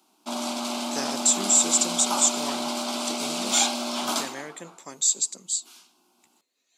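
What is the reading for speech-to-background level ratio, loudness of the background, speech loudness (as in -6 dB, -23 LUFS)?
5.5 dB, -28.0 LUFS, -22.5 LUFS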